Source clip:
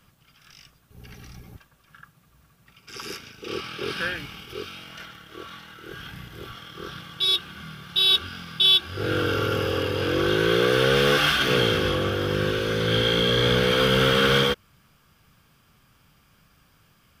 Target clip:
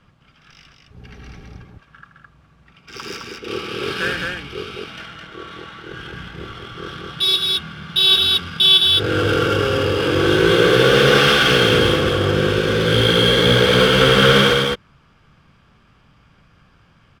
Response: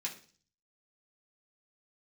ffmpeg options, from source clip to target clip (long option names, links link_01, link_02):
-af "aecho=1:1:78.72|212.8:0.316|0.708,adynamicsmooth=sensitivity=7.5:basefreq=3800,volume=5dB"